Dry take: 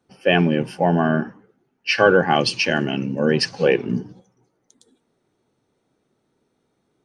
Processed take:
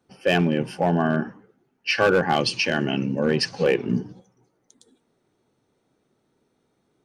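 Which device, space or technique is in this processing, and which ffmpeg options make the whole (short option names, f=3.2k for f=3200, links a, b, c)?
clipper into limiter: -af "asoftclip=type=hard:threshold=-9dB,alimiter=limit=-12dB:level=0:latency=1:release=163"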